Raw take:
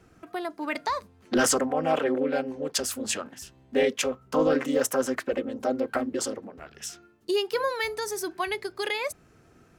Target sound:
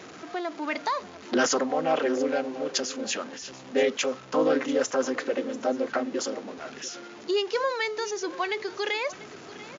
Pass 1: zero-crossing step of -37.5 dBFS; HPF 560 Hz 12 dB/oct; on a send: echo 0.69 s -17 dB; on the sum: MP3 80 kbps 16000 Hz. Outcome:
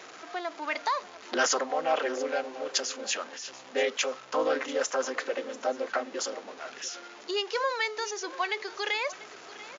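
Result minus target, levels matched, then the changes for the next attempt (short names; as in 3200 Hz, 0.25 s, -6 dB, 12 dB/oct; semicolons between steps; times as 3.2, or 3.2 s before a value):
250 Hz band -8.0 dB
change: HPF 220 Hz 12 dB/oct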